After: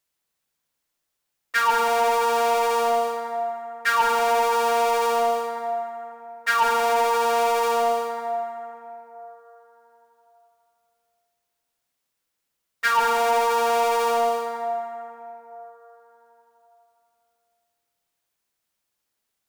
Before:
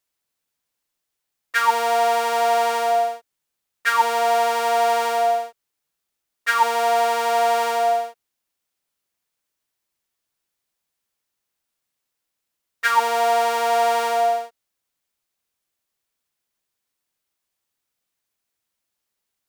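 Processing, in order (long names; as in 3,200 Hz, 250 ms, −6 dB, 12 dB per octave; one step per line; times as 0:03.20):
dense smooth reverb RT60 3.6 s, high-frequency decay 0.4×, DRR 3.5 dB
soft clipping −13.5 dBFS, distortion −17 dB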